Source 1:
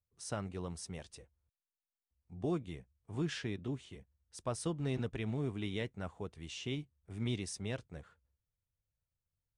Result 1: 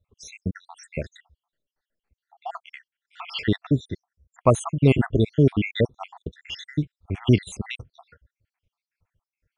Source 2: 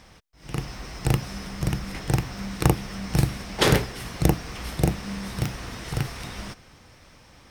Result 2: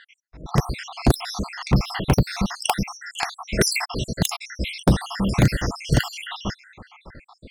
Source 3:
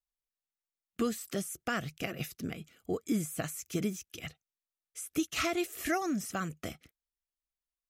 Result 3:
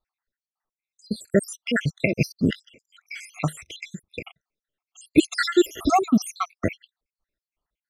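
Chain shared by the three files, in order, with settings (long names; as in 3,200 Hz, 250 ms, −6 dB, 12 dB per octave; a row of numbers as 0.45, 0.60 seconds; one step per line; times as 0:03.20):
time-frequency cells dropped at random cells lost 76%
low-pass that shuts in the quiet parts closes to 2,600 Hz, open at −29.5 dBFS
wave folding −20.5 dBFS
loudness normalisation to −24 LKFS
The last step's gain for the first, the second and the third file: +21.0, +13.5, +17.0 decibels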